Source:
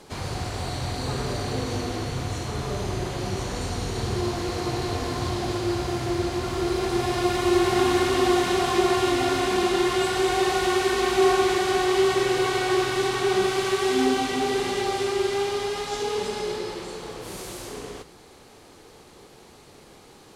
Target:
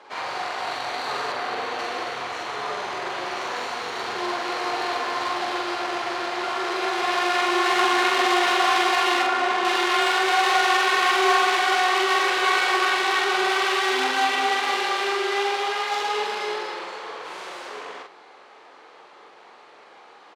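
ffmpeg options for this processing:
ffmpeg -i in.wav -filter_complex "[0:a]asettb=1/sr,asplit=3[link_01][link_02][link_03];[link_01]atrim=end=9.224[link_04];[link_02]atrim=start=9.22:end=9.65,asetpts=PTS-STARTPTS,afade=type=in:duration=0.004:curve=qsin,afade=type=out:start_time=0.426:duration=0.004:curve=qsin,highshelf=frequency=2800:gain=-9.5[link_05];[link_03]atrim=start=9.646[link_06];[link_04][link_05]acrossfade=duration=0.004:curve1=hsin:curve2=qsin[link_07];[link_07][link_06]acrossfade=duration=0.004:curve1=qsin:curve2=hsin,asplit=2[link_08][link_09];[link_09]aeval=exprs='0.0794*(abs(mod(val(0)/0.0794+3,4)-2)-1)':channel_layout=same,volume=-8dB[link_10];[link_08][link_10]amix=inputs=2:normalize=0,adynamicsmooth=sensitivity=2:basefreq=2000,highpass=890,asplit=2[link_11][link_12];[link_12]adelay=45,volume=-2.5dB[link_13];[link_11][link_13]amix=inputs=2:normalize=0,asettb=1/sr,asplit=3[link_14][link_15][link_16];[link_14]atrim=end=1.324[link_17];[link_15]atrim=start=1.32:end=1.79,asetpts=PTS-STARTPTS,afade=type=in:duration=0.004:curve=qsin,afade=type=out:start_time=0.466:duration=0.004:curve=qsin,acrossover=split=3800[link_18][link_19];[link_19]acompressor=threshold=-49dB:ratio=4:attack=1:release=60[link_20];[link_18][link_20]amix=inputs=2:normalize=0[link_21];[link_16]atrim=start=1.786[link_22];[link_17][link_21]acrossfade=duration=0.004:curve1=hsin:curve2=qsin[link_23];[link_23][link_22]acrossfade=duration=0.004:curve1=qsin:curve2=hsin,volume=6dB" out.wav

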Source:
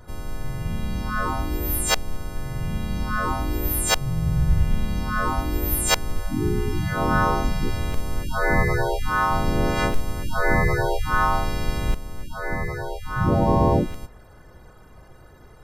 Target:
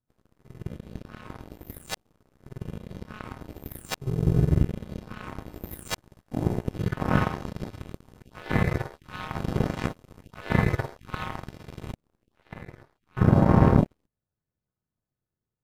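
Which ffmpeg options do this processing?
ffmpeg -i in.wav -af "highpass=130,bass=frequency=250:gain=15,treble=frequency=4000:gain=-2,aeval=exprs='1*(cos(1*acos(clip(val(0)/1,-1,1)))-cos(1*PI/2))+0.00794*(cos(3*acos(clip(val(0)/1,-1,1)))-cos(3*PI/2))+0.0562*(cos(4*acos(clip(val(0)/1,-1,1)))-cos(4*PI/2))+0.00631*(cos(6*acos(clip(val(0)/1,-1,1)))-cos(6*PI/2))+0.141*(cos(7*acos(clip(val(0)/1,-1,1)))-cos(7*PI/2))':channel_layout=same,volume=-5.5dB" out.wav

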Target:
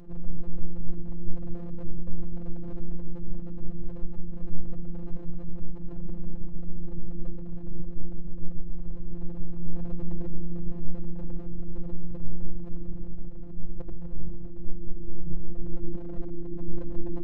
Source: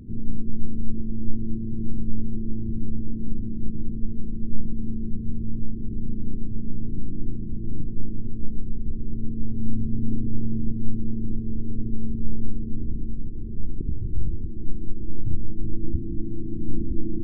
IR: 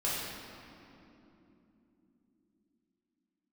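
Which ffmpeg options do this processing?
-af "aeval=exprs='abs(val(0))':channel_layout=same,afftfilt=real='hypot(re,im)*cos(PI*b)':imag='0':win_size=1024:overlap=0.75,volume=-1.5dB"

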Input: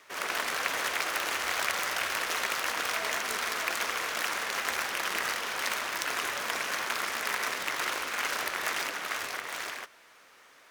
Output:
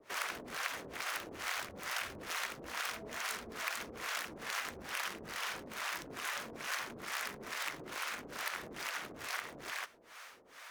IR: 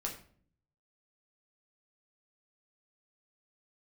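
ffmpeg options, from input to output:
-filter_complex "[0:a]acrossover=split=290[link_01][link_02];[link_01]alimiter=level_in=26.5dB:limit=-24dB:level=0:latency=1:release=86,volume=-26.5dB[link_03];[link_02]acompressor=threshold=-42dB:ratio=5[link_04];[link_03][link_04]amix=inputs=2:normalize=0,acrossover=split=580[link_05][link_06];[link_05]aeval=exprs='val(0)*(1-1/2+1/2*cos(2*PI*2.3*n/s))':channel_layout=same[link_07];[link_06]aeval=exprs='val(0)*(1-1/2-1/2*cos(2*PI*2.3*n/s))':channel_layout=same[link_08];[link_07][link_08]amix=inputs=2:normalize=0,volume=7dB"

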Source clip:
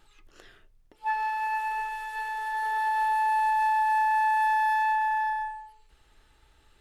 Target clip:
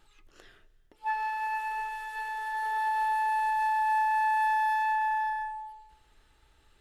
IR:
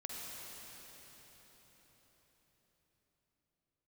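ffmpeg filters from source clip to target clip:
-filter_complex "[0:a]asplit=2[link_01][link_02];[1:a]atrim=start_sample=2205,afade=type=out:start_time=0.3:duration=0.01,atrim=end_sample=13671,asetrate=27783,aresample=44100[link_03];[link_02][link_03]afir=irnorm=-1:irlink=0,volume=-18.5dB[link_04];[link_01][link_04]amix=inputs=2:normalize=0,volume=-3dB"

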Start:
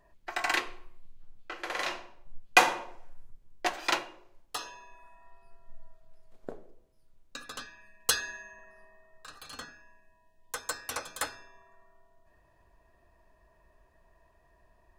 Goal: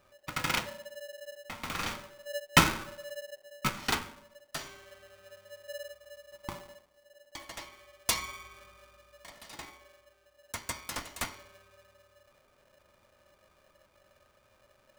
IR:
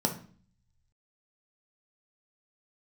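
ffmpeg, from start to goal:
-filter_complex "[0:a]asplit=2[link_01][link_02];[1:a]atrim=start_sample=2205,afade=type=out:start_time=0.45:duration=0.01,atrim=end_sample=20286[link_03];[link_02][link_03]afir=irnorm=-1:irlink=0,volume=-16dB[link_04];[link_01][link_04]amix=inputs=2:normalize=0,aeval=exprs='val(0)*sgn(sin(2*PI*580*n/s))':channel_layout=same,volume=-3dB"

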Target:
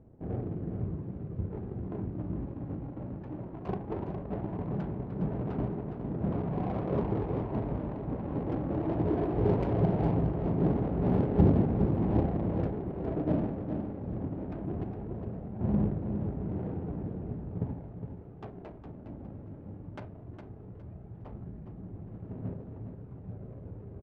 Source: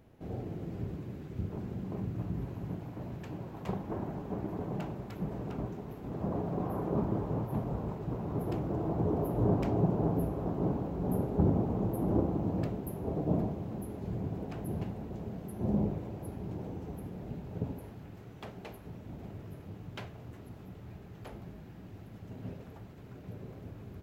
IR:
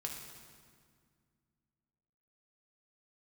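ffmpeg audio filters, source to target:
-af "aphaser=in_gain=1:out_gain=1:delay=3.7:decay=0.31:speed=0.18:type=sinusoidal,adynamicsmooth=sensitivity=4.5:basefreq=620,aecho=1:1:411|822|1233:0.398|0.0916|0.0211,volume=1.5dB"

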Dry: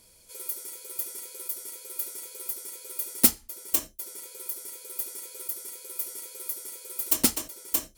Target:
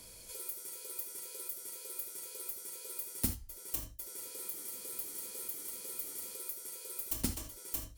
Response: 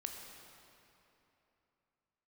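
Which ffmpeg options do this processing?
-filter_complex "[0:a]acrossover=split=130[link_01][link_02];[link_02]acompressor=threshold=-55dB:ratio=2[link_03];[link_01][link_03]amix=inputs=2:normalize=0,asettb=1/sr,asplit=3[link_04][link_05][link_06];[link_04]atrim=end=3.984[link_07];[link_05]atrim=start=3.98:end=6.36,asetpts=PTS-STARTPTS,afade=type=in:duration=0.004:curve=qsin,afade=type=out:start_time=2.376:duration=0.004:curve=qsin,asplit=8[link_08][link_09][link_10][link_11][link_12][link_13][link_14][link_15];[link_09]adelay=194,afreqshift=-84,volume=-6.5dB[link_16];[link_10]adelay=388,afreqshift=-168,volume=-11.4dB[link_17];[link_11]adelay=582,afreqshift=-252,volume=-16.3dB[link_18];[link_12]adelay=776,afreqshift=-336,volume=-21.1dB[link_19];[link_13]adelay=970,afreqshift=-420,volume=-26dB[link_20];[link_14]adelay=1164,afreqshift=-504,volume=-30.9dB[link_21];[link_15]adelay=1358,afreqshift=-588,volume=-35.8dB[link_22];[link_08][link_16][link_17][link_18][link_19][link_20][link_21][link_22]amix=inputs=8:normalize=0,atrim=end_sample=104958[link_23];[link_06]atrim=start=6.356[link_24];[link_07][link_23]acrossfade=duration=0.004:curve1=hsin:curve2=qsin[link_25];[link_25][link_24]acrossfade=duration=0.004:curve1=qsin:curve2=hsin[link_26];[1:a]atrim=start_sample=2205,atrim=end_sample=3969[link_27];[link_26][link_27]afir=irnorm=-1:irlink=0,volume=8.5dB"

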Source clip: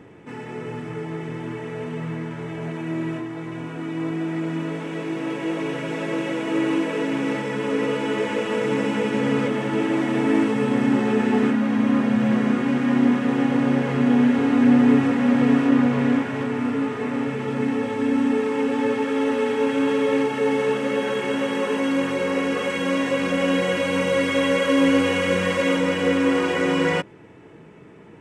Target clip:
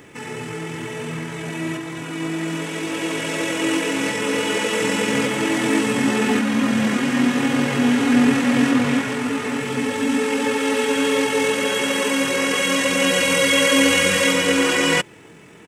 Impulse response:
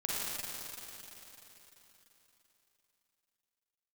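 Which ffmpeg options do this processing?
-af "crystalizer=i=7.5:c=0,atempo=1.8"

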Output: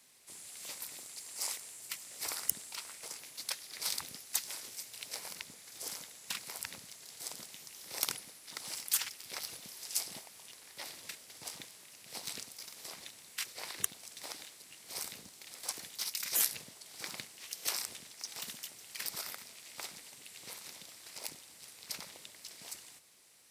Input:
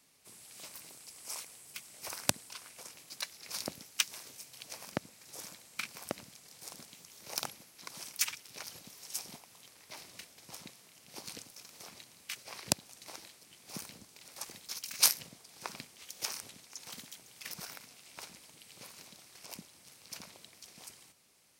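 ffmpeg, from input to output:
ffmpeg -i in.wav -af "bass=frequency=250:gain=-5,treble=frequency=4000:gain=-6,afftfilt=real='re*lt(hypot(re,im),0.0282)':imag='im*lt(hypot(re,im),0.0282)':win_size=1024:overlap=0.75,highshelf=frequency=4500:gain=12,acrusher=bits=6:mode=log:mix=0:aa=0.000001,asetrate=40517,aresample=44100,volume=1dB" out.wav

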